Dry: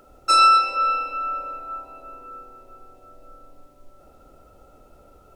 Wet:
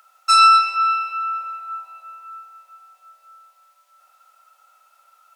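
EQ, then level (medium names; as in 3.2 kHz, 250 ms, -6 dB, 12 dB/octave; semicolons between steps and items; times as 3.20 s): high-pass 1.1 kHz 24 dB/octave; +3.5 dB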